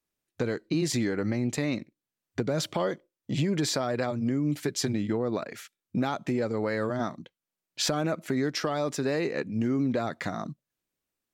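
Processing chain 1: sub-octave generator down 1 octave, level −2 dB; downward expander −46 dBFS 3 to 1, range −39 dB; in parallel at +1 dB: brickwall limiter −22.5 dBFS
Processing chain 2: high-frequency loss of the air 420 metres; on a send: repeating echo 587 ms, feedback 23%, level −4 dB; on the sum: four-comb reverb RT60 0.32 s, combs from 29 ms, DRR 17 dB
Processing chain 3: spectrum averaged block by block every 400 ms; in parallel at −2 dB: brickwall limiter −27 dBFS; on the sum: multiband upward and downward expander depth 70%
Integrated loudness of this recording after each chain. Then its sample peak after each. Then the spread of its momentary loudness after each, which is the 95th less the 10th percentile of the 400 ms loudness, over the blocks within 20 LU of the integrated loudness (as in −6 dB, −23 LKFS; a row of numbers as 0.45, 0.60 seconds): −24.0, −30.0, −30.0 LKFS; −10.5, −14.0, −15.5 dBFS; 10, 6, 10 LU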